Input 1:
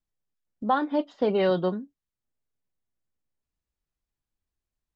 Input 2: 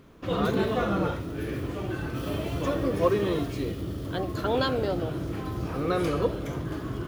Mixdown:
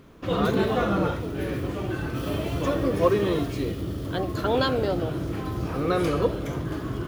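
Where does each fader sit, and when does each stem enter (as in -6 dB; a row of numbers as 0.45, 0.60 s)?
-14.0, +2.5 dB; 0.00, 0.00 s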